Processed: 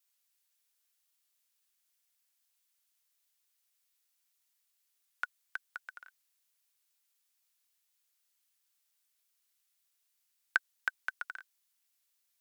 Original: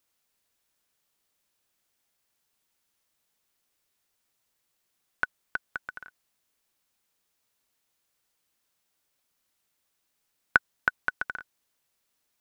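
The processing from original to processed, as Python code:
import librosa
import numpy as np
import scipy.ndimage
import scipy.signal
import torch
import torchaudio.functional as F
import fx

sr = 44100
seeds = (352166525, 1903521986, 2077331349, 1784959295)

y = fx.high_shelf(x, sr, hz=4800.0, db=-11.0)
y = fx.vibrato(y, sr, rate_hz=3.8, depth_cents=64.0)
y = np.diff(y, prepend=0.0)
y = y * 10.0 ** (6.5 / 20.0)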